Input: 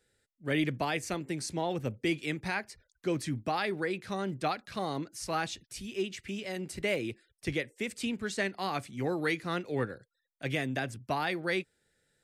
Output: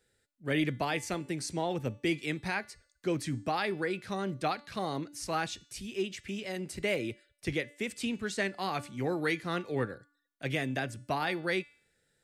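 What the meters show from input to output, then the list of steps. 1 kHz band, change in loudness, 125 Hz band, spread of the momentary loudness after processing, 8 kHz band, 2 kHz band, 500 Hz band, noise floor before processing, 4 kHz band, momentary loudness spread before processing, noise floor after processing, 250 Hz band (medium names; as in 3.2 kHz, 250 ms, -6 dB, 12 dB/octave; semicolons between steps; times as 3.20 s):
0.0 dB, 0.0 dB, 0.0 dB, 7 LU, 0.0 dB, 0.0 dB, 0.0 dB, -81 dBFS, 0.0 dB, 7 LU, -76 dBFS, 0.0 dB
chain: de-hum 290.3 Hz, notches 33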